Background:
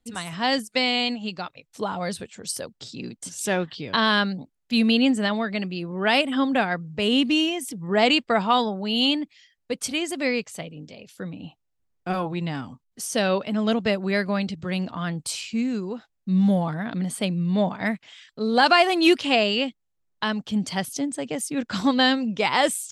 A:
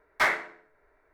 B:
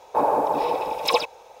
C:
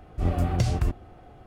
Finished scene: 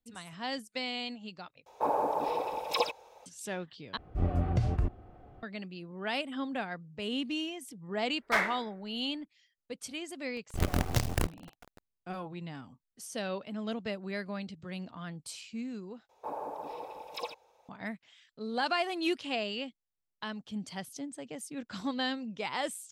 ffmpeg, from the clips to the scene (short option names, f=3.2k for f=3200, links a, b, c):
-filter_complex "[2:a]asplit=2[a][b];[3:a]asplit=2[c][d];[0:a]volume=-13.5dB[e];[c]lowpass=f=1.5k:p=1[f];[d]acrusher=bits=4:dc=4:mix=0:aa=0.000001[g];[e]asplit=4[h][i][j][k];[h]atrim=end=1.664[l];[a]atrim=end=1.6,asetpts=PTS-STARTPTS,volume=-8.5dB[m];[i]atrim=start=3.256:end=3.974[n];[f]atrim=end=1.46,asetpts=PTS-STARTPTS,volume=-4.5dB[o];[j]atrim=start=5.426:end=16.094[p];[b]atrim=end=1.6,asetpts=PTS-STARTPTS,volume=-18dB[q];[k]atrim=start=17.686[r];[1:a]atrim=end=1.13,asetpts=PTS-STARTPTS,volume=-4dB,afade=t=in:d=0.004:c=hsin,afade=t=out:st=1.126:d=0.004:c=hsin,adelay=8120[s];[g]atrim=end=1.46,asetpts=PTS-STARTPTS,volume=-5.5dB,afade=t=in:d=0.004:c=hsin,afade=t=out:st=1.456:d=0.004:c=hsin,adelay=10360[t];[l][m]acrossfade=d=0.004:c1=hsin:c2=hsin[u];[u][n]acrossfade=d=0.004:c1=hsin:c2=hsin[v];[v][o]acrossfade=d=0.004:c1=hsin:c2=hsin[w];[w][p]acrossfade=d=0.004:c1=hsin:c2=hsin[x];[x][q]acrossfade=d=0.004:c1=hsin:c2=hsin[y];[y][r]acrossfade=d=0.004:c1=hsin:c2=hsin[z];[z][s][t]amix=inputs=3:normalize=0"